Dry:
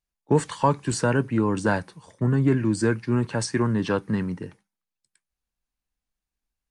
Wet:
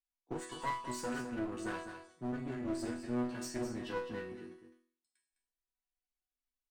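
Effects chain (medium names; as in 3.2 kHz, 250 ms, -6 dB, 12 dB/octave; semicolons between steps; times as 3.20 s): chord resonator B3 sus4, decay 0.47 s; one-sided clip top -51.5 dBFS; on a send: delay 207 ms -9.5 dB; on the sum: trim +7.5 dB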